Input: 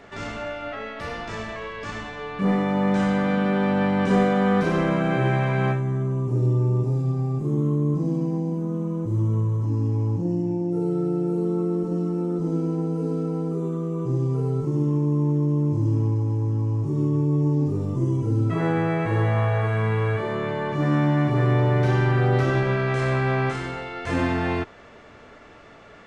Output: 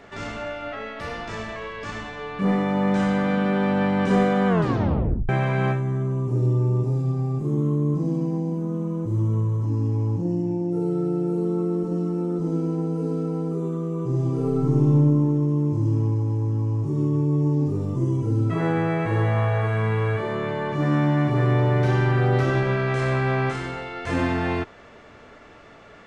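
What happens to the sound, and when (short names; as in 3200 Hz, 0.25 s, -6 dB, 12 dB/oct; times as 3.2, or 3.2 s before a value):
4.48 tape stop 0.81 s
14.09–14.94 reverb throw, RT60 2.2 s, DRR -0.5 dB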